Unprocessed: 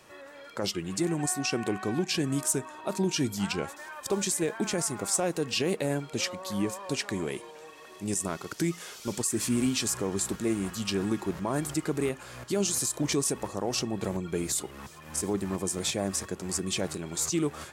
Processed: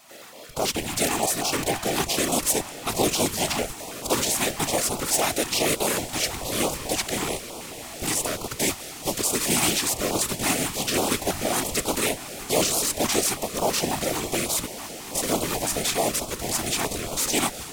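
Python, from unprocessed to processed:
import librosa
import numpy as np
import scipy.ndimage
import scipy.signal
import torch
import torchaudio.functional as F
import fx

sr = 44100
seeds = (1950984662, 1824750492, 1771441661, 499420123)

p1 = fx.spec_flatten(x, sr, power=0.44)
p2 = scipy.signal.sosfilt(scipy.signal.butter(4, 200.0, 'highpass', fs=sr, output='sos'), p1)
p3 = fx.peak_eq(p2, sr, hz=680.0, db=9.5, octaves=0.7)
p4 = fx.notch(p3, sr, hz=1600.0, q=8.0)
p5 = fx.schmitt(p4, sr, flips_db=-29.5)
p6 = p4 + (p5 * 10.0 ** (-8.0 / 20.0))
p7 = fx.whisperise(p6, sr, seeds[0])
p8 = p7 + fx.echo_diffused(p7, sr, ms=1104, feedback_pct=71, wet_db=-15, dry=0)
p9 = fx.filter_held_notch(p8, sr, hz=9.2, low_hz=480.0, high_hz=1800.0)
y = p9 * 10.0 ** (3.5 / 20.0)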